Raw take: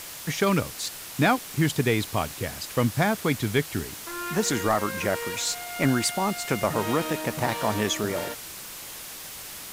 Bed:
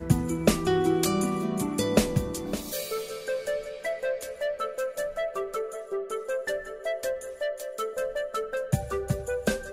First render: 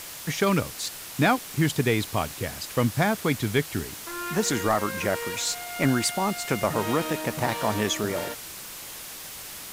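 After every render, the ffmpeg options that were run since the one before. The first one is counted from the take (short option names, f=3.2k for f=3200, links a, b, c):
-af anull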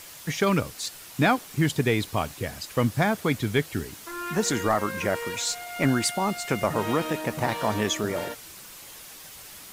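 -af "afftdn=nr=6:nf=-40"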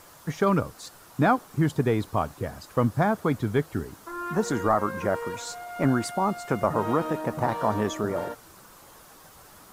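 -af "highshelf=f=1.7k:t=q:w=1.5:g=-9"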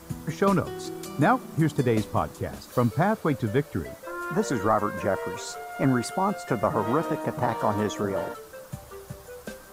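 -filter_complex "[1:a]volume=-12.5dB[a];[0:a][a]amix=inputs=2:normalize=0"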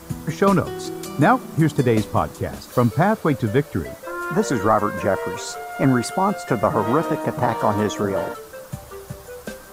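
-af "volume=5.5dB"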